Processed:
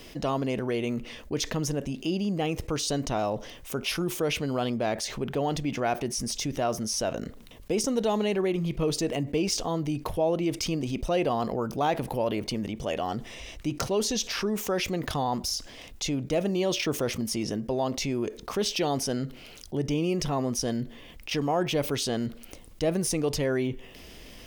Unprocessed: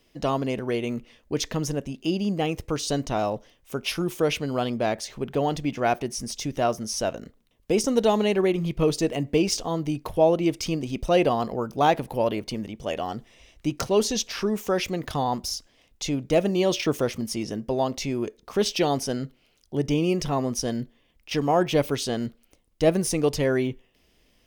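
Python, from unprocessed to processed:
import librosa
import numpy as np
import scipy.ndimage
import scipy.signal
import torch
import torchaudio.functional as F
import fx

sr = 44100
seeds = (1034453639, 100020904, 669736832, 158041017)

y = fx.env_flatten(x, sr, amount_pct=50)
y = y * 10.0 ** (-7.5 / 20.0)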